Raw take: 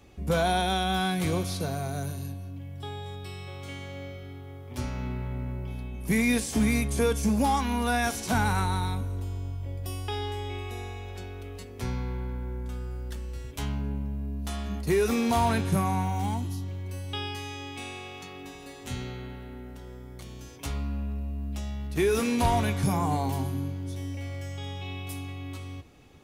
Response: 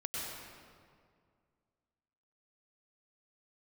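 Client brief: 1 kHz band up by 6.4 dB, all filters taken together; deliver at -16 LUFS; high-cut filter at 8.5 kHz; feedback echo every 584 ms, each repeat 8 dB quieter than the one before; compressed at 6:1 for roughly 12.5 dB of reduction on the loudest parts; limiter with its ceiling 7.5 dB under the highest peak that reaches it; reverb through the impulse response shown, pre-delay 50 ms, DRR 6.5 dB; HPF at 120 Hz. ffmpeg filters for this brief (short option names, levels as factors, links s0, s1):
-filter_complex "[0:a]highpass=120,lowpass=8500,equalizer=f=1000:t=o:g=8.5,acompressor=threshold=0.0316:ratio=6,alimiter=level_in=1.33:limit=0.0631:level=0:latency=1,volume=0.75,aecho=1:1:584|1168|1752|2336|2920:0.398|0.159|0.0637|0.0255|0.0102,asplit=2[s0][s1];[1:a]atrim=start_sample=2205,adelay=50[s2];[s1][s2]afir=irnorm=-1:irlink=0,volume=0.355[s3];[s0][s3]amix=inputs=2:normalize=0,volume=9.44"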